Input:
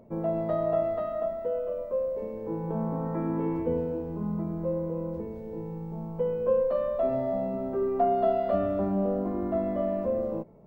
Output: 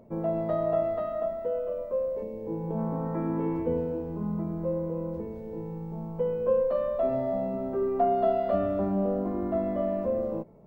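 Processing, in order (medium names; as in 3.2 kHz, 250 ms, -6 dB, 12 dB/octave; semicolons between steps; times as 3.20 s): 2.22–2.77 s: peaking EQ 1.4 kHz -14 dB -> -7.5 dB 0.93 oct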